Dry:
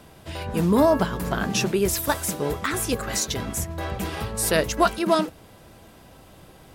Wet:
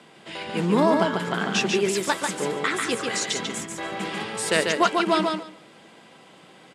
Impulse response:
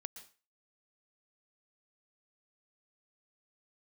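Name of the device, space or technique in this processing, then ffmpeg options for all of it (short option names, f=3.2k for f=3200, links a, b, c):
television speaker: -af "highpass=f=180:w=0.5412,highpass=f=180:w=1.3066,equalizer=f=270:t=q:w=4:g=-4,equalizer=f=630:t=q:w=4:g=-4,equalizer=f=2.1k:t=q:w=4:g=5,equalizer=f=3.1k:t=q:w=4:g=4,equalizer=f=5.9k:t=q:w=4:g=-5,lowpass=f=8.4k:w=0.5412,lowpass=f=8.4k:w=1.3066,aecho=1:1:143|286|429:0.631|0.107|0.0182"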